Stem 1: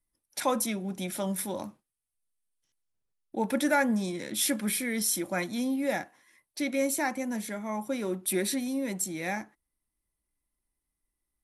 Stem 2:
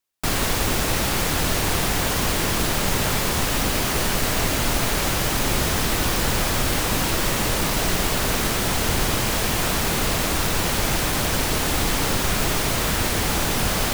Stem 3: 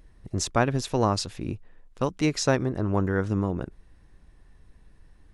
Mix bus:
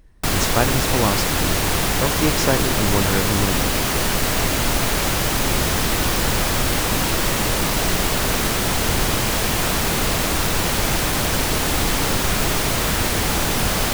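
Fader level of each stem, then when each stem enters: mute, +2.0 dB, +2.5 dB; mute, 0.00 s, 0.00 s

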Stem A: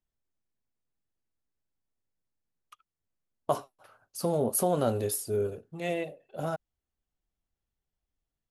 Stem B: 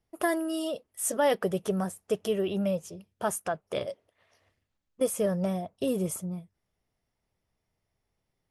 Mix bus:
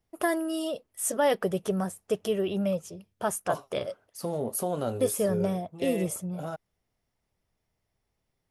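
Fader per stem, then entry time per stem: -3.5 dB, +0.5 dB; 0.00 s, 0.00 s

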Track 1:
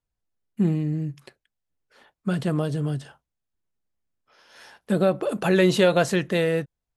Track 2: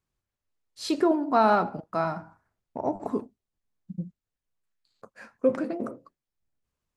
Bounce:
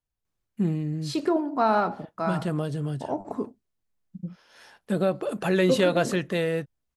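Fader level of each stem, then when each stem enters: -3.5 dB, -1.5 dB; 0.00 s, 0.25 s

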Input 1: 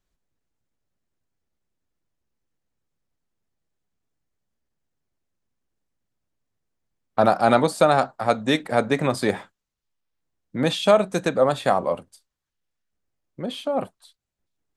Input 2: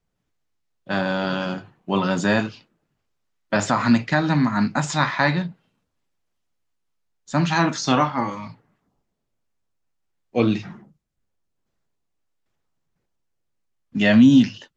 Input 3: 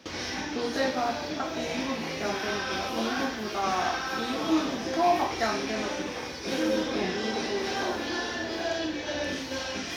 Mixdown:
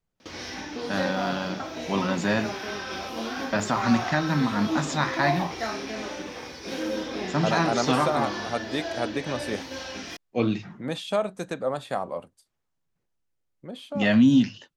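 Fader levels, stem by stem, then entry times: -9.0 dB, -5.0 dB, -3.0 dB; 0.25 s, 0.00 s, 0.20 s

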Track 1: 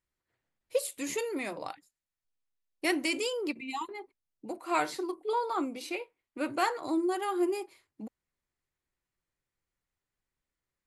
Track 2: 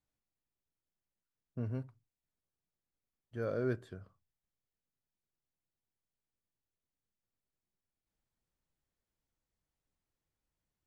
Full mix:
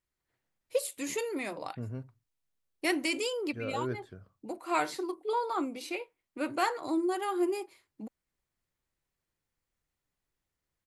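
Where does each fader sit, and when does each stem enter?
-0.5 dB, -1.0 dB; 0.00 s, 0.20 s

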